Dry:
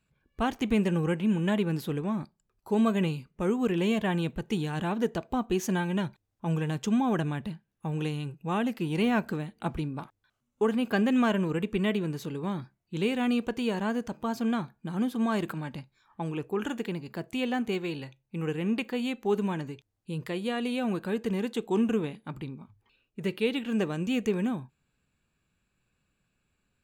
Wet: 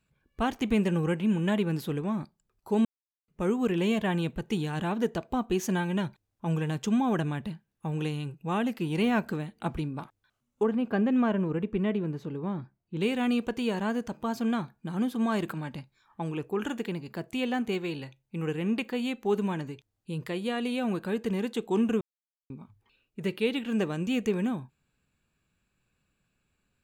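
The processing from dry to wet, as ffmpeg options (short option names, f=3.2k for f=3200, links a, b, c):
-filter_complex "[0:a]asettb=1/sr,asplit=3[a][b][c];[a]atrim=end=10.634[d];[b]atrim=start=10.63:end=13.01,asetpts=PTS-STARTPTS,afade=t=in:d=0.004:c=qsin,afade=t=out:st=2.376:d=0.004:c=qsin,lowpass=f=1.1k:p=1[e];[c]atrim=start=13.006[f];[d][e]acrossfade=d=0.004:c1=hsin:c2=qsin[g];[g][f]acrossfade=d=0.004:c1=qsin:c2=hsin,asplit=5[h][i][j][k][l];[h]atrim=end=2.85,asetpts=PTS-STARTPTS,afade=t=out:st=2.846:d=0.004:c=hsin[m];[i]atrim=start=2.85:end=3.28,asetpts=PTS-STARTPTS,volume=0[n];[j]atrim=start=3.28:end=22.01,asetpts=PTS-STARTPTS,afade=t=in:d=0.004:c=hsin,afade=t=out:st=18.726:d=0.004:c=hsin[o];[k]atrim=start=22.01:end=22.5,asetpts=PTS-STARTPTS,volume=0[p];[l]atrim=start=22.5,asetpts=PTS-STARTPTS,afade=t=in:d=0.004:c=hsin[q];[m][n][o][p][q]concat=n=5:v=0:a=1"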